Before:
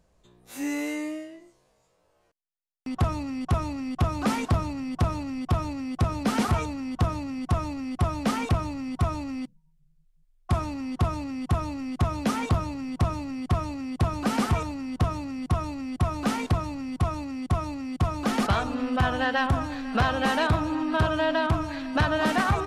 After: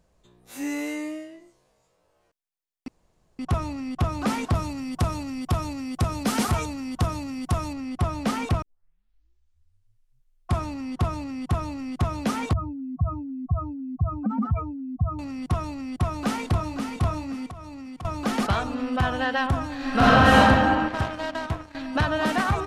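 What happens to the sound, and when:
0:02.88–0:03.39: fill with room tone
0:04.55–0:07.73: high-shelf EQ 5,300 Hz +10 dB
0:08.62: tape start 1.90 s
0:12.53–0:15.19: expanding power law on the bin magnitudes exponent 2.5
0:15.81–0:16.83: delay throw 530 ms, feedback 25%, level −6.5 dB
0:17.48–0:18.05: downward compressor 16 to 1, threshold −35 dBFS
0:19.76–0:20.38: thrown reverb, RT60 2.3 s, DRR −9 dB
0:20.88–0:21.75: power curve on the samples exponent 2

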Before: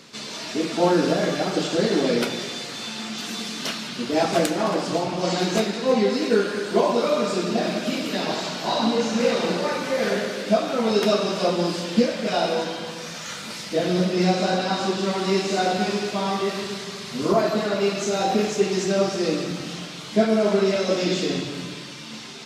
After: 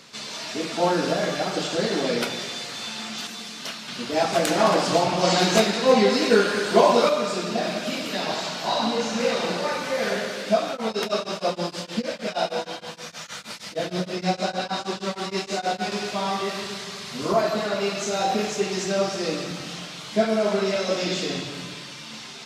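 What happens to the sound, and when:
0:03.27–0:03.88: clip gain −4.5 dB
0:04.47–0:07.09: clip gain +5.5 dB
0:10.70–0:15.92: tremolo along a rectified sine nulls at 6.4 Hz
whole clip: drawn EQ curve 100 Hz 0 dB, 340 Hz −4 dB, 680 Hz +2 dB; level −2 dB

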